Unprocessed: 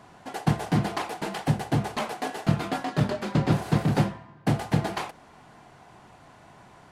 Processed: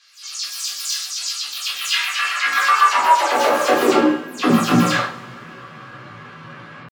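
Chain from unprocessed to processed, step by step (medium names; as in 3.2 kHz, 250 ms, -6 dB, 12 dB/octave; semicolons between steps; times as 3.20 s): delay that grows with frequency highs early, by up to 178 ms; level-controlled noise filter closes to 2 kHz, open at -22.5 dBFS; peaking EQ 150 Hz -5 dB 1.3 oct; peak limiter -22 dBFS, peak gain reduction 9.5 dB; high-pass sweep 3.2 kHz -> 79 Hz, 1.29–5.08 s; pitch shift +8 st; two-slope reverb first 0.38 s, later 3.2 s, from -28 dB, DRR -3.5 dB; trim +9 dB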